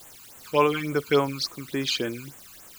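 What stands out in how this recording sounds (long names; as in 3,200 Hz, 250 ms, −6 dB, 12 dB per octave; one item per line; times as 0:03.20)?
tremolo triangle 1.1 Hz, depth 50%
a quantiser's noise floor 8 bits, dither triangular
phaser sweep stages 12, 3.5 Hz, lowest notch 560–4,900 Hz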